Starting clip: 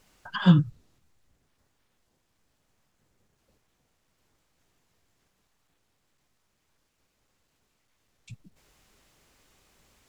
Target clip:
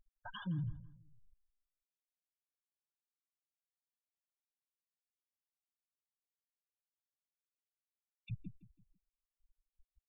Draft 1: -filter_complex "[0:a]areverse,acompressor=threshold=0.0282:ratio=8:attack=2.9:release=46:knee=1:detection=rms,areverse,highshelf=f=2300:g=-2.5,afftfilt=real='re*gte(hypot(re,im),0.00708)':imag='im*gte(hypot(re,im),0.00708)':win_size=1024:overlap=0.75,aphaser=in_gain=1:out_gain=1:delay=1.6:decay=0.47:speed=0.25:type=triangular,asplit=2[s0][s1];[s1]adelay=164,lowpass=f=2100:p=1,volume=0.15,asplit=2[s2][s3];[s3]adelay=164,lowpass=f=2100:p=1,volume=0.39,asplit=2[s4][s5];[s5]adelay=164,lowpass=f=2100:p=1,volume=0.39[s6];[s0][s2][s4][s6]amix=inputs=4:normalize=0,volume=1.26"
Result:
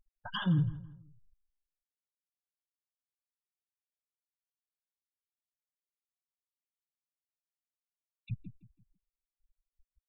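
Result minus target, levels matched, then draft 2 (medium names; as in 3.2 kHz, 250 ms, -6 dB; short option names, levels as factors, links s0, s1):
compression: peak gain reduction -10.5 dB
-filter_complex "[0:a]areverse,acompressor=threshold=0.00708:ratio=8:attack=2.9:release=46:knee=1:detection=rms,areverse,highshelf=f=2300:g=-2.5,afftfilt=real='re*gte(hypot(re,im),0.00708)':imag='im*gte(hypot(re,im),0.00708)':win_size=1024:overlap=0.75,aphaser=in_gain=1:out_gain=1:delay=1.6:decay=0.47:speed=0.25:type=triangular,asplit=2[s0][s1];[s1]adelay=164,lowpass=f=2100:p=1,volume=0.15,asplit=2[s2][s3];[s3]adelay=164,lowpass=f=2100:p=1,volume=0.39,asplit=2[s4][s5];[s5]adelay=164,lowpass=f=2100:p=1,volume=0.39[s6];[s0][s2][s4][s6]amix=inputs=4:normalize=0,volume=1.26"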